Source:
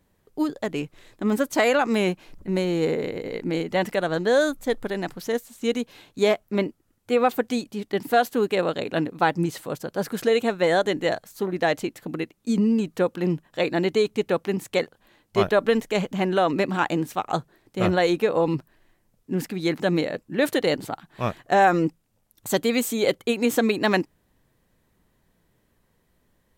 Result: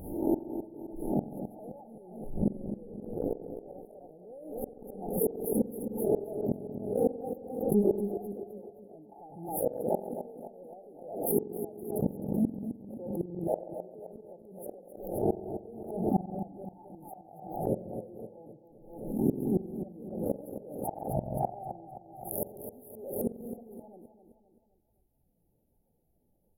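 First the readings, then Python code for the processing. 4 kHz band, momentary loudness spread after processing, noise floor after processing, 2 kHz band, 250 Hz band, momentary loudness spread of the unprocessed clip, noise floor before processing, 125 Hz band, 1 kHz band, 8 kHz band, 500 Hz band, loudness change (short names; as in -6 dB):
under -40 dB, 18 LU, -72 dBFS, under -40 dB, -8.5 dB, 9 LU, -68 dBFS, -7.5 dB, -15.0 dB, -9.0 dB, -11.0 dB, -10.0 dB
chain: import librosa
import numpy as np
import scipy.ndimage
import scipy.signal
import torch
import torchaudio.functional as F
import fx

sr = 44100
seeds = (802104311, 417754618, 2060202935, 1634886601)

p1 = fx.spec_swells(x, sr, rise_s=0.41)
p2 = fx.dereverb_blind(p1, sr, rt60_s=1.5)
p3 = fx.leveller(p2, sr, passes=2)
p4 = fx.rider(p3, sr, range_db=4, speed_s=2.0)
p5 = p3 + (p4 * 10.0 ** (0.5 / 20.0))
p6 = fx.gate_flip(p5, sr, shuts_db=-8.0, range_db=-35)
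p7 = p6 + fx.echo_feedback(p6, sr, ms=261, feedback_pct=47, wet_db=-9.5, dry=0)
p8 = fx.rev_spring(p7, sr, rt60_s=1.1, pass_ms=(45,), chirp_ms=50, drr_db=11.5)
p9 = fx.vibrato(p8, sr, rate_hz=7.2, depth_cents=36.0)
p10 = fx.brickwall_bandstop(p9, sr, low_hz=900.0, high_hz=9600.0)
p11 = fx.pre_swell(p10, sr, db_per_s=66.0)
y = p11 * 10.0 ** (-6.5 / 20.0)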